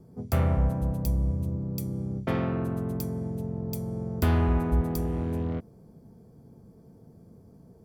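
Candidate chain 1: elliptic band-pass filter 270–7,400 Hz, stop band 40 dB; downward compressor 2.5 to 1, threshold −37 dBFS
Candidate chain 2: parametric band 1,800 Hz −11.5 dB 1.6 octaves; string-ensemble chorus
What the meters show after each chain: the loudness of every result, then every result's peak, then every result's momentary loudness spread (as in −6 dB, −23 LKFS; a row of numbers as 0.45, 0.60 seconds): −40.5, −32.0 LKFS; −22.5, −15.5 dBFS; 22, 9 LU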